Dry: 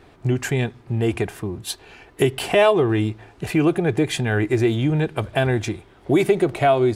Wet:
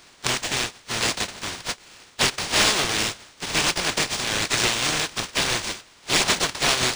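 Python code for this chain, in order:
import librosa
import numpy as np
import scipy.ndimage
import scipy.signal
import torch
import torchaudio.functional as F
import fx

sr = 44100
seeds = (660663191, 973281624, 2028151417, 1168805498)

p1 = fx.spec_flatten(x, sr, power=0.33)
p2 = F.preemphasis(torch.from_numpy(p1), 0.8).numpy()
p3 = (np.mod(10.0 ** (12.5 / 20.0) * p2 + 1.0, 2.0) - 1.0) / 10.0 ** (12.5 / 20.0)
p4 = p2 + (p3 * librosa.db_to_amplitude(-11.5))
p5 = np.interp(np.arange(len(p4)), np.arange(len(p4))[::3], p4[::3])
y = p5 * librosa.db_to_amplitude(1.0)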